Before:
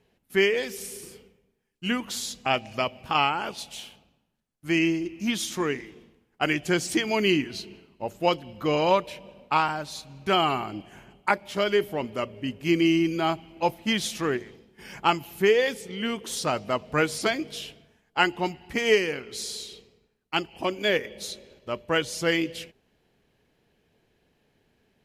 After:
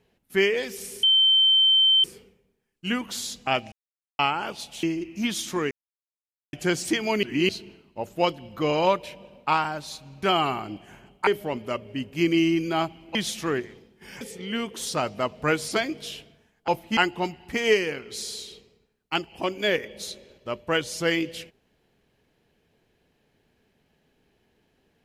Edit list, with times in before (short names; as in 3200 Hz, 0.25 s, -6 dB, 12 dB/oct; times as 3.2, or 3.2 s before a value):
1.03 add tone 3100 Hz -15 dBFS 1.01 s
2.71–3.18 mute
3.82–4.87 cut
5.75–6.57 mute
7.27–7.53 reverse
11.31–11.75 cut
13.63–13.92 move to 18.18
14.98–15.71 cut